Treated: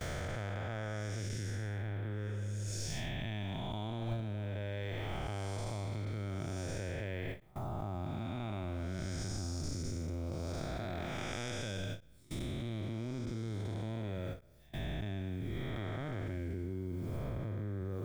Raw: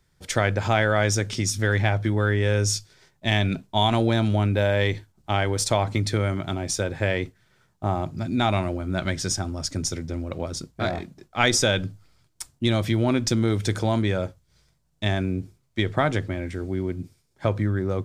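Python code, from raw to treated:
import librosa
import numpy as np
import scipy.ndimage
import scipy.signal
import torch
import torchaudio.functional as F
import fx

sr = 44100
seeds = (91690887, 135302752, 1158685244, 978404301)

y = fx.spec_blur(x, sr, span_ms=458.0)
y = fx.dmg_noise_colour(y, sr, seeds[0], colour='blue', level_db=-67.0)
y = fx.dereverb_blind(y, sr, rt60_s=0.78)
y = fx.spec_repair(y, sr, seeds[1], start_s=2.3, length_s=0.46, low_hz=300.0, high_hz=6200.0, source='both')
y = fx.level_steps(y, sr, step_db=24)
y = fx.low_shelf(y, sr, hz=68.0, db=10.0)
y = fx.end_taper(y, sr, db_per_s=210.0)
y = y * librosa.db_to_amplitude(7.5)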